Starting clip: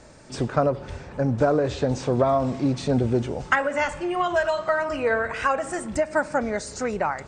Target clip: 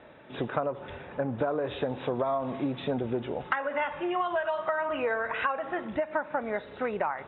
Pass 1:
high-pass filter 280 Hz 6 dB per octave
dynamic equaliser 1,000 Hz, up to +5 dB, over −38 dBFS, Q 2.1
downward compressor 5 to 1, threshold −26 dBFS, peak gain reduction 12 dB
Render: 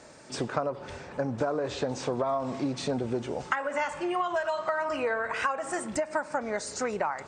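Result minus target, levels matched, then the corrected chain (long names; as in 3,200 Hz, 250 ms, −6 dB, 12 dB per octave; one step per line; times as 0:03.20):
4,000 Hz band +3.0 dB
high-pass filter 280 Hz 6 dB per octave
dynamic equaliser 1,000 Hz, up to +5 dB, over −38 dBFS, Q 2.1
Chebyshev low-pass filter 3,800 Hz, order 10
downward compressor 5 to 1, threshold −26 dBFS, peak gain reduction 11.5 dB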